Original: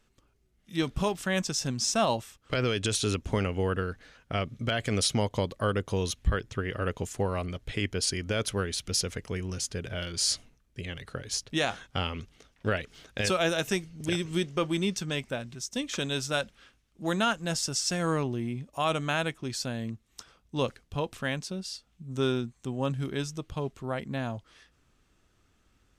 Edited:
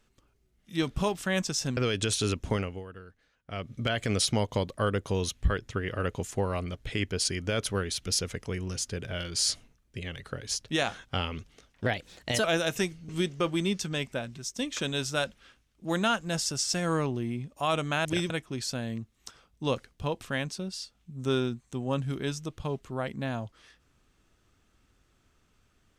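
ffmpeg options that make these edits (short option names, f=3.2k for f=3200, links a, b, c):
-filter_complex "[0:a]asplit=9[a][b][c][d][e][f][g][h][i];[a]atrim=end=1.772[j];[b]atrim=start=2.588:end=3.66,asetpts=PTS-STARTPTS,afade=t=out:st=0.742:d=0.33:silence=0.158489[k];[c]atrim=start=3.66:end=4.26,asetpts=PTS-STARTPTS,volume=-16dB[l];[d]atrim=start=4.26:end=12.684,asetpts=PTS-STARTPTS,afade=t=in:d=0.33:silence=0.158489[m];[e]atrim=start=12.68:end=13.36,asetpts=PTS-STARTPTS,asetrate=51597,aresample=44100[n];[f]atrim=start=13.356:end=14.012[o];[g]atrim=start=14.258:end=19.222[p];[h]atrim=start=14.008:end=14.262[q];[i]atrim=start=19.218[r];[k][l][m]concat=n=3:v=0:a=1[s];[j][s]acrossfade=d=0.004:c1=hsin:c2=hsin[t];[t][n]acrossfade=d=0.004:c1=hsin:c2=hsin[u];[u][o]acrossfade=d=0.004:c1=hsin:c2=hsin[v];[v][p]acrossfade=d=0.004:c1=hsin:c2=hsin[w];[w][q]acrossfade=d=0.004:c1=hsin:c2=hsin[x];[x][r]acrossfade=d=0.004:c1=hsin:c2=hsin"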